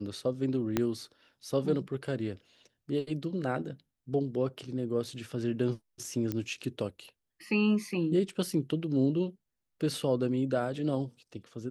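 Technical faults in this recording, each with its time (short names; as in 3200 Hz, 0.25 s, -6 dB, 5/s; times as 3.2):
0.77 pop -13 dBFS
6.32 pop -19 dBFS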